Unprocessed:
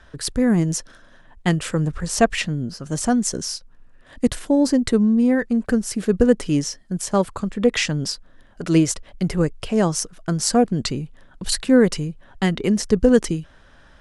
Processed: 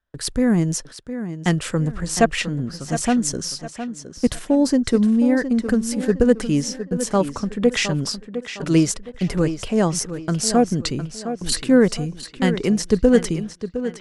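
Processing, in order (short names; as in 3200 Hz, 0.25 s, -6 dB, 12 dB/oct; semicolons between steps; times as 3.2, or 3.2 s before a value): gate -39 dBFS, range -32 dB; on a send: tape echo 0.711 s, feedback 38%, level -9.5 dB, low-pass 5100 Hz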